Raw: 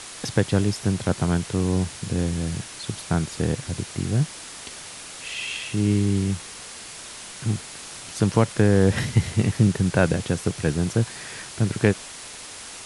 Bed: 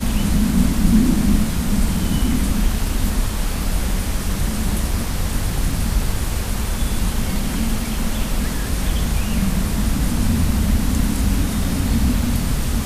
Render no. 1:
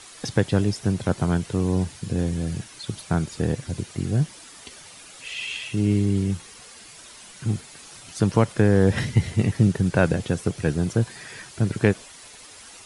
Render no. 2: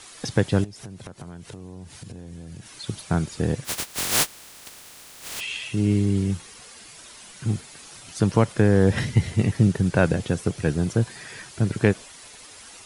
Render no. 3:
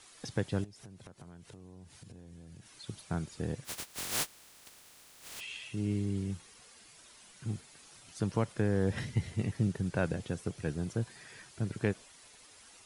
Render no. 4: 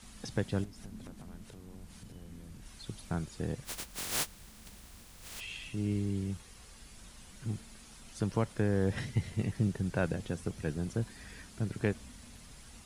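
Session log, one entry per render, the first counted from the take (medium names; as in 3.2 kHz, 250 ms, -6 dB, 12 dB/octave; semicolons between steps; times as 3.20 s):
noise reduction 9 dB, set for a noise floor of -39 dBFS
0.64–2.74 s: compression 12:1, threshold -35 dBFS; 3.64–5.39 s: spectral contrast reduction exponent 0.1
trim -12 dB
add bed -34.5 dB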